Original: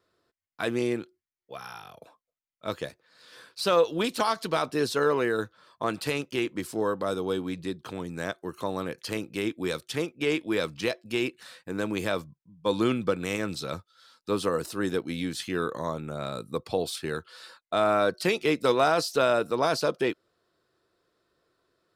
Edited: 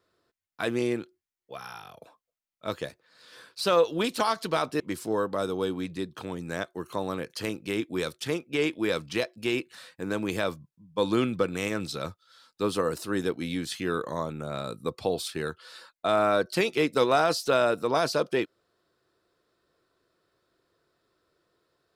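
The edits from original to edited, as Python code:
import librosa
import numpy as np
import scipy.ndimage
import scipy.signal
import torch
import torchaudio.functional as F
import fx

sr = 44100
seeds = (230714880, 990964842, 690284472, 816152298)

y = fx.edit(x, sr, fx.cut(start_s=4.8, length_s=1.68), tone=tone)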